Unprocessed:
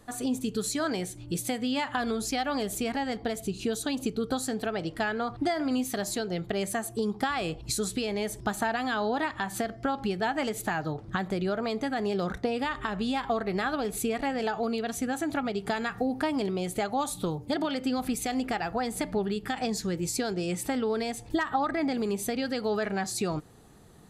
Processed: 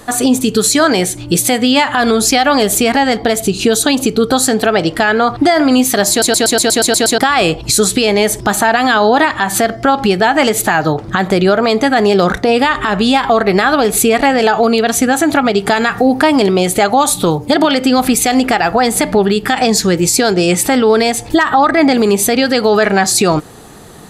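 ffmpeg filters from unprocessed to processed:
-filter_complex "[0:a]asplit=10[a][b][c][d][e][f][g][h][i][j];[a]atrim=end=6.222[k];[b]atrim=start=6.098:end=6.222[l];[c]atrim=start=6.098:end=6.222[m];[d]atrim=start=6.098:end=6.222[n];[e]atrim=start=6.098:end=6.222[o];[f]atrim=start=6.098:end=6.222[p];[g]atrim=start=6.098:end=6.222[q];[h]atrim=start=6.098:end=6.222[r];[i]atrim=start=6.098:end=6.222[s];[j]atrim=start=7.178[t];[k][l]acrossfade=d=0.004:c1=hsin:c2=hsin[u];[u][m]acrossfade=d=0.004:c1=hsin:c2=hsin[v];[v][n]acrossfade=d=0.004:c1=hsin:c2=hsin[w];[w][o]acrossfade=d=0.004:c1=hsin:c2=hsin[x];[x][p]acrossfade=d=0.004:c1=hsin:c2=hsin[y];[y][q]acrossfade=d=0.004:c1=hsin:c2=hsin[z];[z][r]acrossfade=d=0.004:c1=hsin:c2=hsin[aa];[aa][s]acrossfade=d=0.004:c1=hsin:c2=hsin[ab];[ab][t]acrossfade=d=0.004:c1=hsin:c2=hsin,lowshelf=f=230:g=-8,alimiter=level_in=22.5dB:limit=-1dB:release=50:level=0:latency=1,volume=-1dB"

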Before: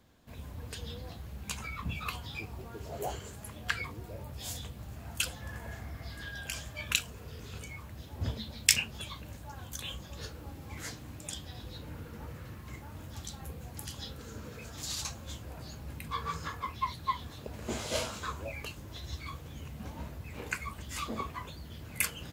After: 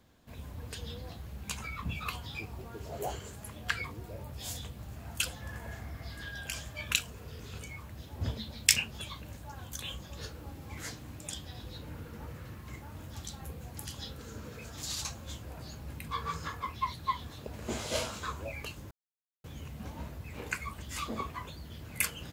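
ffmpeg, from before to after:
-filter_complex "[0:a]asplit=3[a][b][c];[a]atrim=end=18.91,asetpts=PTS-STARTPTS,afade=t=out:st=18.906:d=0.004:c=hsin[d];[b]atrim=start=18.91:end=19.44,asetpts=PTS-STARTPTS,volume=0[e];[c]atrim=start=19.44,asetpts=PTS-STARTPTS,afade=t=in:d=0.004:c=hsin[f];[d][e][f]concat=n=3:v=0:a=1"

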